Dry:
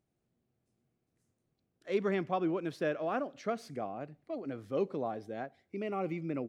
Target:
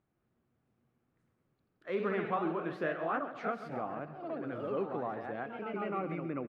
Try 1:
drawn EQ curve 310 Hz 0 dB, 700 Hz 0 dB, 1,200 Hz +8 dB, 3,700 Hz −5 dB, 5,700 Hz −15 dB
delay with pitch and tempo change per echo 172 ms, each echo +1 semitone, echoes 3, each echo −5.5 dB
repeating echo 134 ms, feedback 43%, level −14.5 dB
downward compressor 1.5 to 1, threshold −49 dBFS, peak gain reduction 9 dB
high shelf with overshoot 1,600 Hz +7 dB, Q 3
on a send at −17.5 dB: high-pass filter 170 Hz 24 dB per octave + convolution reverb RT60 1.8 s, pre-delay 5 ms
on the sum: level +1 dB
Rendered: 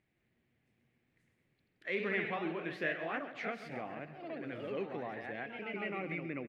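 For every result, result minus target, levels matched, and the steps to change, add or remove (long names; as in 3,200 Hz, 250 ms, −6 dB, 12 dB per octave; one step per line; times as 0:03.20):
4,000 Hz band +8.5 dB; downward compressor: peak gain reduction +3.5 dB
remove: high shelf with overshoot 1,600 Hz +7 dB, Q 3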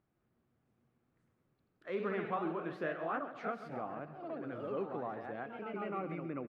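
downward compressor: peak gain reduction +3.5 dB
change: downward compressor 1.5 to 1, threshold −39 dBFS, peak gain reduction 5.5 dB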